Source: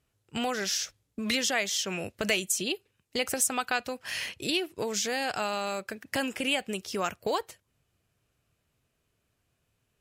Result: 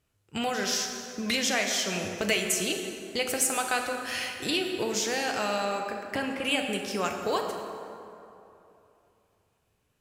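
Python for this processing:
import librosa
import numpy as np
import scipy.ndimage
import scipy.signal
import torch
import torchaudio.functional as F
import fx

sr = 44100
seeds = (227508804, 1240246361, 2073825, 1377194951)

y = fx.peak_eq(x, sr, hz=13000.0, db=fx.line((5.64, -7.0), (6.43, -14.0)), octaves=2.2, at=(5.64, 6.43), fade=0.02)
y = fx.rev_plate(y, sr, seeds[0], rt60_s=2.9, hf_ratio=0.55, predelay_ms=0, drr_db=2.5)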